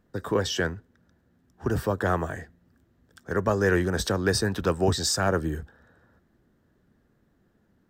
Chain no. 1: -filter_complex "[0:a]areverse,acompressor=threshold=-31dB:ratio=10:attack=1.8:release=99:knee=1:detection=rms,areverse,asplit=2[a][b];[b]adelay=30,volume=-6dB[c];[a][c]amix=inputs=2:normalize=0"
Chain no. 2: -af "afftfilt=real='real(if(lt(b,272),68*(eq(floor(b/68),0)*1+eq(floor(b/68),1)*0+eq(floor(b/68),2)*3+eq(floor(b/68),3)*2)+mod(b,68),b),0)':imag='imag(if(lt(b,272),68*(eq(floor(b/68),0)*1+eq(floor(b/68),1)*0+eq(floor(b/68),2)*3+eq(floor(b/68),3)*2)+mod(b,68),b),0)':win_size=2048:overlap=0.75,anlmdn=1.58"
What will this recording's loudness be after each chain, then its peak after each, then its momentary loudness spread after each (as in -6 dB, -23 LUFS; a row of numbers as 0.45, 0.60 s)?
-37.0, -24.0 LUFS; -23.5, -9.5 dBFS; 8, 10 LU